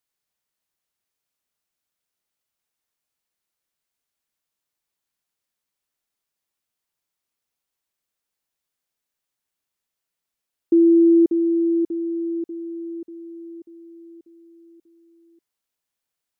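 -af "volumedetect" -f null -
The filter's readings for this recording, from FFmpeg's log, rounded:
mean_volume: -26.8 dB
max_volume: -10.2 dB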